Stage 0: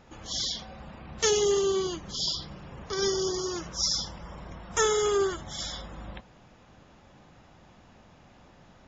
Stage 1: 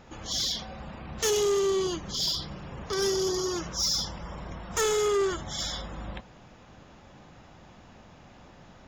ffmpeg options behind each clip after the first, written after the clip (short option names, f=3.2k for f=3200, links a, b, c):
-af "asoftclip=type=tanh:threshold=-25dB,volume=3.5dB"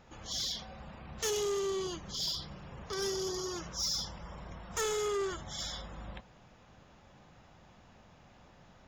-af "equalizer=f=300:t=o:w=0.78:g=-3.5,volume=-6.5dB"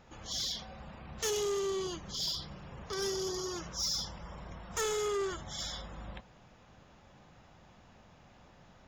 -af anull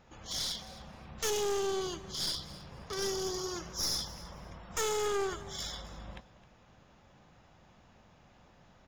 -af "aeval=exprs='0.0473*(cos(1*acos(clip(val(0)/0.0473,-1,1)))-cos(1*PI/2))+0.0133*(cos(4*acos(clip(val(0)/0.0473,-1,1)))-cos(4*PI/2))+0.0075*(cos(6*acos(clip(val(0)/0.0473,-1,1)))-cos(6*PI/2))+0.0015*(cos(7*acos(clip(val(0)/0.0473,-1,1)))-cos(7*PI/2))':c=same,aecho=1:1:263|526:0.126|0.0277"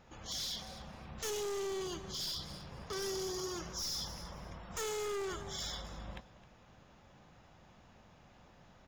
-af "alimiter=level_in=4dB:limit=-24dB:level=0:latency=1:release=18,volume=-4dB,volume=34dB,asoftclip=hard,volume=-34dB"